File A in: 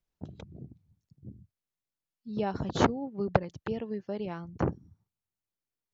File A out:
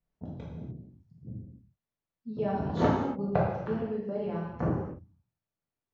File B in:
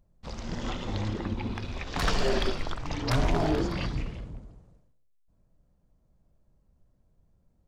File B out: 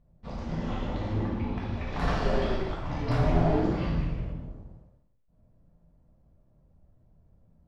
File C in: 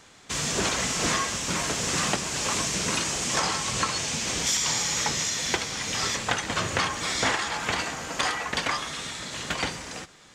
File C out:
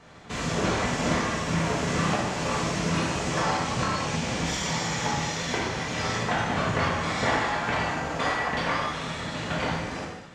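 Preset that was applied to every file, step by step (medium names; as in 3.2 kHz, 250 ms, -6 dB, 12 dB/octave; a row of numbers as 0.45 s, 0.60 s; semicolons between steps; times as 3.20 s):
low-pass 1.1 kHz 6 dB/octave; in parallel at -0.5 dB: compression, threshold -39 dBFS; on the sum: gated-style reverb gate 320 ms falling, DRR -6 dB; peak normalisation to -12 dBFS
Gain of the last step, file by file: -6.0 dB, -6.0 dB, -3.5 dB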